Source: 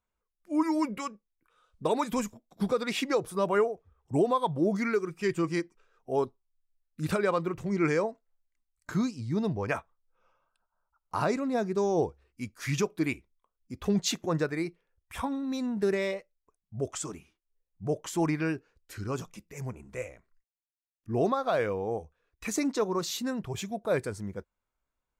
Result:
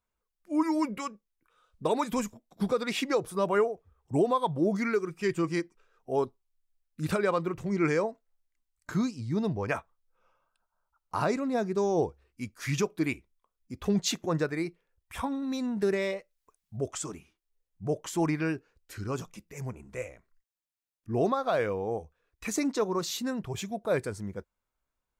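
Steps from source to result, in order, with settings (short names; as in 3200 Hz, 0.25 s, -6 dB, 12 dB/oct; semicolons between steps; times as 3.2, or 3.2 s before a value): 15.42–16.77 mismatched tape noise reduction encoder only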